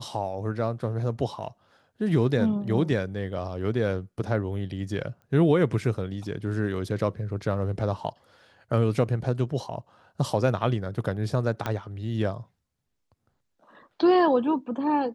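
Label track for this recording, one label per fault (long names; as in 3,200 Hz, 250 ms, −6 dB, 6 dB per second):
5.220000	5.220000	click −38 dBFS
11.660000	11.660000	click −14 dBFS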